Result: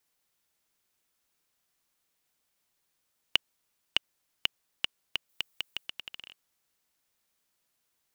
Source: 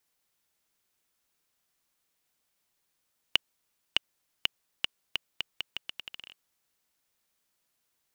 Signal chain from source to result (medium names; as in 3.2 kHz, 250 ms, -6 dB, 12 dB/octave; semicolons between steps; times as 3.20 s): 5.29–5.87 s: treble shelf 7.5 kHz +9 dB